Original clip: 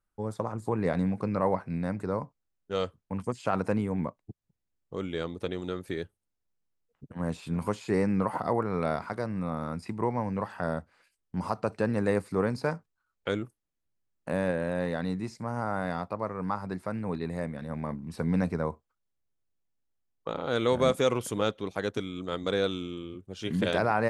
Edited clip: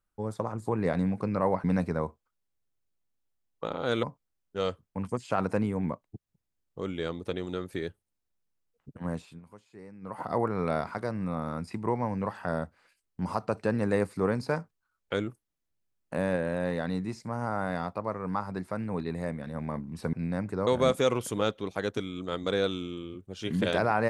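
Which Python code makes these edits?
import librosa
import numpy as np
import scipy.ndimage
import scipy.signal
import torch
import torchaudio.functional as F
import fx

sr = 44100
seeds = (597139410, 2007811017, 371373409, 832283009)

y = fx.edit(x, sr, fx.swap(start_s=1.64, length_s=0.54, other_s=18.28, other_length_s=2.39),
    fx.fade_down_up(start_s=7.18, length_s=1.36, db=-21.5, fade_s=0.38), tone=tone)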